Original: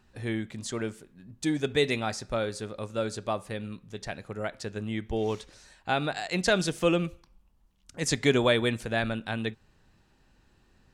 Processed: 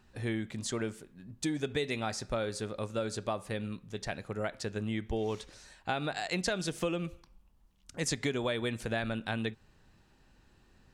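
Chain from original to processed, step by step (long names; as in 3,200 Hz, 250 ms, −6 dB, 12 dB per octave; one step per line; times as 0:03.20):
downward compressor 6 to 1, threshold −29 dBFS, peak gain reduction 12 dB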